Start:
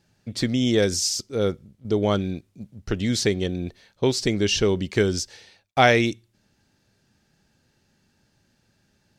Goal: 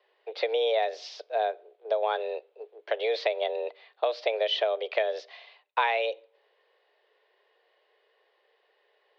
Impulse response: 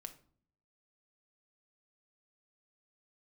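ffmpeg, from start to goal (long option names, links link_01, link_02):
-filter_complex "[0:a]highpass=frequency=230:width_type=q:width=0.5412,highpass=frequency=230:width_type=q:width=1.307,lowpass=frequency=3500:width_type=q:width=0.5176,lowpass=frequency=3500:width_type=q:width=0.7071,lowpass=frequency=3500:width_type=q:width=1.932,afreqshift=220,asplit=2[link_01][link_02];[1:a]atrim=start_sample=2205[link_03];[link_02][link_03]afir=irnorm=-1:irlink=0,volume=-9.5dB[link_04];[link_01][link_04]amix=inputs=2:normalize=0,acompressor=threshold=-23dB:ratio=5"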